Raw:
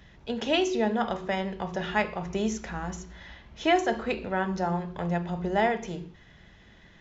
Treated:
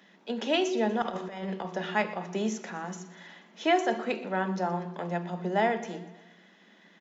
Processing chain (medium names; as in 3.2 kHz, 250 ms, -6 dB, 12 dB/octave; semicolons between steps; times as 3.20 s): Chebyshev high-pass 180 Hz, order 6; 1.02–1.66 s: compressor with a negative ratio -33 dBFS, ratio -0.5; feedback delay 121 ms, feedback 56%, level -17.5 dB; trim -1 dB